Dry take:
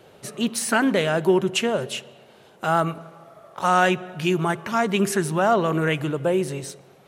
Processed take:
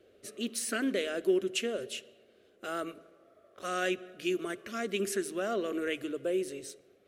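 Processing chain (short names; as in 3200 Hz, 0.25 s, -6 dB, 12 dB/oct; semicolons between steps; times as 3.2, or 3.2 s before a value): fixed phaser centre 370 Hz, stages 4; mismatched tape noise reduction decoder only; gain -8 dB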